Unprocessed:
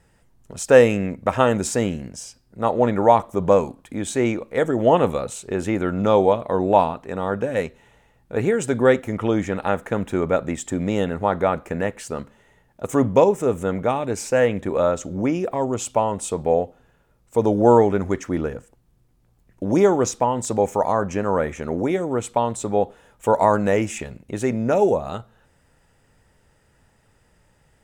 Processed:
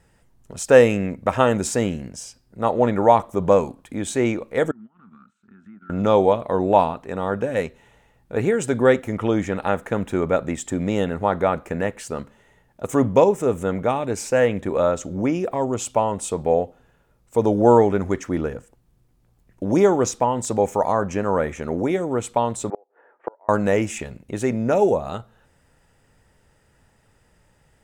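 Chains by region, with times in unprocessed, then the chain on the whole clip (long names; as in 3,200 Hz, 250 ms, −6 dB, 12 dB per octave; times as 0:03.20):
0:04.71–0:05.90: downward compressor 5 to 1, threshold −32 dBFS + pair of resonant band-passes 540 Hz, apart 2.7 octaves + transient designer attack −2 dB, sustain −12 dB
0:22.70–0:23.49: Chebyshev band-pass filter 350–1,800 Hz, order 3 + gate with flip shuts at −15 dBFS, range −34 dB
whole clip: no processing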